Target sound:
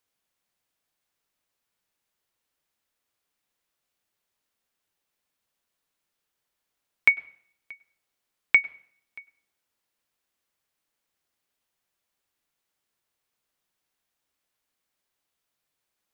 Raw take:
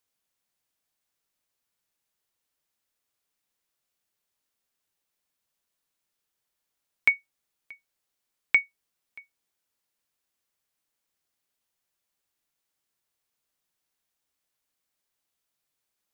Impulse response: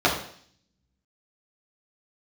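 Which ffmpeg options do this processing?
-filter_complex "[0:a]bass=f=250:g=-1,treble=f=4k:g=-4,asplit=2[a][b];[1:a]atrim=start_sample=2205,adelay=96[c];[b][c]afir=irnorm=-1:irlink=0,volume=-38.5dB[d];[a][d]amix=inputs=2:normalize=0,volume=3dB"

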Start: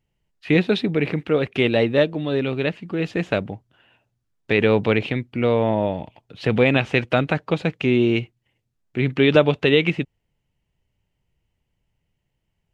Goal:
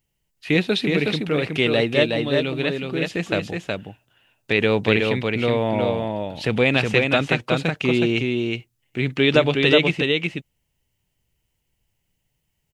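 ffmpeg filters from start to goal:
-af "aecho=1:1:368:0.668,crystalizer=i=3:c=0,volume=-2.5dB"

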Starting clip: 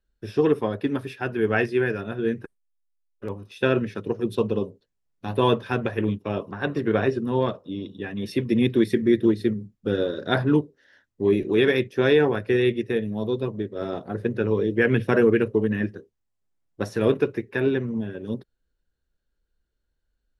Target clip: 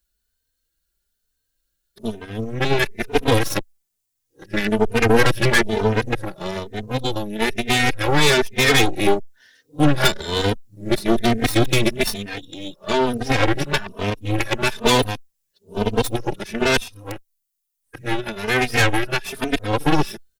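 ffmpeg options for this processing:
-filter_complex "[0:a]areverse,acrossover=split=270[a][b];[b]crystalizer=i=7.5:c=0[c];[a][c]amix=inputs=2:normalize=0,aeval=exprs='clip(val(0),-1,0.0841)':c=same,aeval=exprs='0.794*(cos(1*acos(clip(val(0)/0.794,-1,1)))-cos(1*PI/2))+0.282*(cos(8*acos(clip(val(0)/0.794,-1,1)))-cos(8*PI/2))':c=same,asplit=2[d][e];[e]adelay=3.1,afreqshift=1.1[f];[d][f]amix=inputs=2:normalize=1"

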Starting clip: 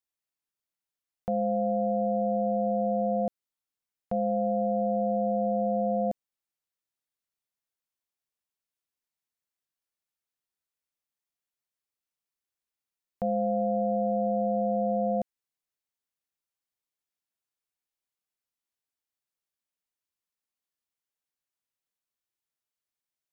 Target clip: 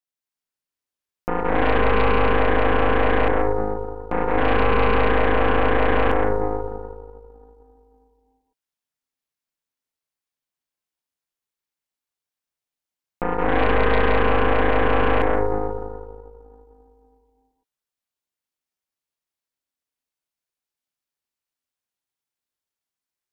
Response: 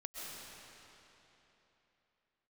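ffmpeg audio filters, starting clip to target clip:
-filter_complex "[1:a]atrim=start_sample=2205[a];[0:a][a]afir=irnorm=-1:irlink=0,aeval=exprs='val(0)*sin(2*PI*260*n/s)':c=same,aeval=exprs='0.133*(cos(1*acos(clip(val(0)/0.133,-1,1)))-cos(1*PI/2))+0.0596*(cos(8*acos(clip(val(0)/0.133,-1,1)))-cos(8*PI/2))':c=same,volume=6dB"

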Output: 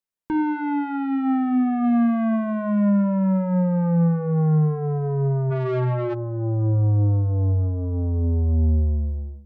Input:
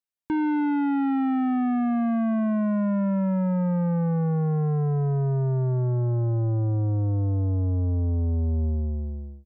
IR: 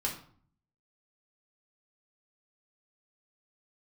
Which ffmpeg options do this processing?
-filter_complex "[0:a]asettb=1/sr,asplit=3[a][b][c];[a]atrim=end=1.844[d];[b]atrim=start=1.84:end=2.89,asetpts=PTS-STARTPTS,afade=t=in:d=0.004:c=qsin,afade=t=out:st=1.046:d=0.004:c=qsin,aemphasis=mode=production:type=75kf[e];[c]atrim=start=2.886[f];[d][e]acrossfade=d=0.004:c1=hsin:c2=qsin[g];[g][f]acrossfade=d=0.004:c1=qsin:c2=hsin,asplit=2[h][i];[1:a]atrim=start_sample=2205,afade=t=out:st=0.23:d=0.01,atrim=end_sample=10584,lowpass=2.2k[j];[i][j]afir=irnorm=-1:irlink=0,volume=-9dB[k];[h][k]amix=inputs=2:normalize=0,asplit=3[l][m][n];[l]afade=t=out:st=5.5:d=0.02[o];[m]asplit=2[p][q];[q]highpass=f=720:p=1,volume=32dB,asoftclip=type=tanh:threshold=-16.5dB[r];[p][r]amix=inputs=2:normalize=0,lowpass=f=1.9k:p=1,volume=-6dB,afade=t=in:st=5.5:d=0.02,afade=t=out:st=6.13:d=0.02[s];[n]afade=t=in:st=6.13:d=0.02[t];[o][s][t]amix=inputs=3:normalize=0"

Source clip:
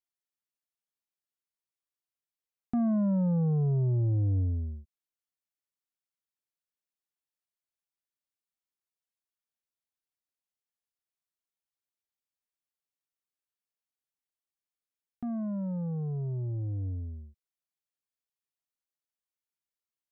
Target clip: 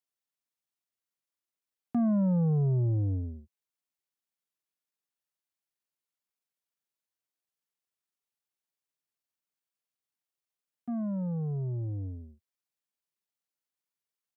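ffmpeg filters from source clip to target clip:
-af "acontrast=64,atempo=1.4,highpass=f=100:w=0.5412,highpass=f=100:w=1.3066,volume=-5.5dB"

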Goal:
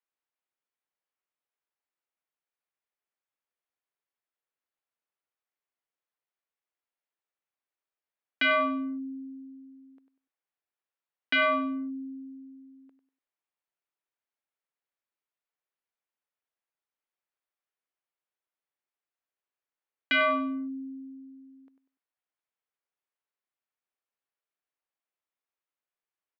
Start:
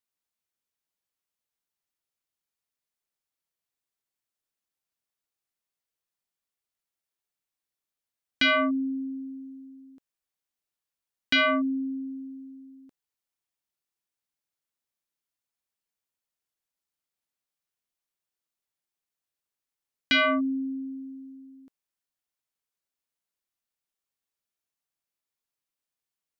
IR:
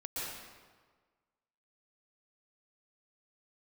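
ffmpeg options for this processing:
-filter_complex "[0:a]acrossover=split=300 3000:gain=0.141 1 0.0794[a][b][c];[a][b][c]amix=inputs=3:normalize=0,aecho=1:1:97|194|291:0.299|0.0866|0.0251"

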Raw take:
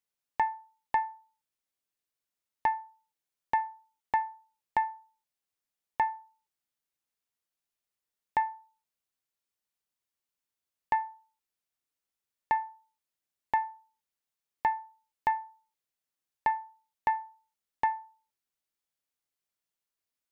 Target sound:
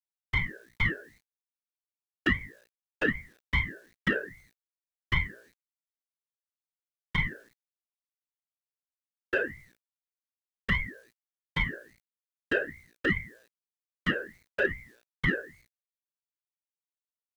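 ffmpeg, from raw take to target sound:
-filter_complex "[0:a]afftfilt=real='hypot(re,im)*cos(2*PI*random(0))':imag='hypot(re,im)*sin(2*PI*random(1))':win_size=512:overlap=0.75,adynamicequalizer=threshold=0.00447:dfrequency=2000:dqfactor=0.79:tfrequency=2000:tqfactor=0.79:attack=5:release=100:ratio=0.375:range=2.5:mode=cutabove:tftype=bell,acrossover=split=170|430[a][b][c];[c]acontrast=33[d];[a][b][d]amix=inputs=3:normalize=0,alimiter=limit=-23.5dB:level=0:latency=1:release=12,dynaudnorm=f=190:g=3:m=10.5dB,asetrate=51597,aresample=44100,flanger=delay=1.7:depth=8.1:regen=-2:speed=0.46:shape=sinusoidal,asplit=2[e][f];[f]asoftclip=type=tanh:threshold=-22dB,volume=-8dB[g];[e][g]amix=inputs=2:normalize=0,bandreject=f=59.17:t=h:w=4,bandreject=f=118.34:t=h:w=4,bandreject=f=177.51:t=h:w=4,bandreject=f=236.68:t=h:w=4,bandreject=f=295.85:t=h:w=4,bandreject=f=355.02:t=h:w=4,bandreject=f=414.19:t=h:w=4,bandreject=f=473.36:t=h:w=4,bandreject=f=532.53:t=h:w=4,bandreject=f=591.7:t=h:w=4,bandreject=f=650.87:t=h:w=4,bandreject=f=710.04:t=h:w=4,bandreject=f=769.21:t=h:w=4,bandreject=f=828.38:t=h:w=4,bandreject=f=887.55:t=h:w=4,bandreject=f=946.72:t=h:w=4,bandreject=f=1.00589k:t=h:w=4,bandreject=f=1.06506k:t=h:w=4,bandreject=f=1.12423k:t=h:w=4,bandreject=f=1.1834k:t=h:w=4,bandreject=f=1.24257k:t=h:w=4,bandreject=f=1.30174k:t=h:w=4,bandreject=f=1.36091k:t=h:w=4,acrusher=bits=9:mix=0:aa=0.000001,aeval=exprs='val(0)*sin(2*PI*810*n/s+810*0.35/2.5*sin(2*PI*2.5*n/s))':c=same"

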